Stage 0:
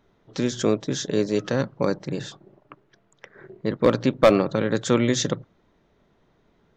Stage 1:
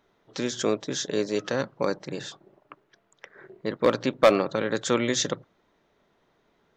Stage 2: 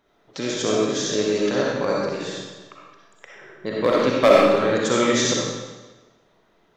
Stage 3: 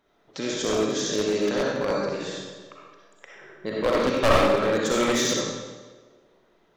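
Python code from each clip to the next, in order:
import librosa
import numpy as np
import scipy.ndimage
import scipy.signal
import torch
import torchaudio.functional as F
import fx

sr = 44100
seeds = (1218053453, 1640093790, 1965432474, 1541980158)

y1 = fx.low_shelf(x, sr, hz=250.0, db=-12.0)
y2 = fx.rev_freeverb(y1, sr, rt60_s=1.2, hf_ratio=0.95, predelay_ms=20, drr_db=-4.5)
y3 = np.minimum(y2, 2.0 * 10.0 ** (-15.0 / 20.0) - y2)
y3 = fx.hum_notches(y3, sr, base_hz=60, count=2)
y3 = fx.echo_banded(y3, sr, ms=188, feedback_pct=60, hz=420.0, wet_db=-18.0)
y3 = F.gain(torch.from_numpy(y3), -2.5).numpy()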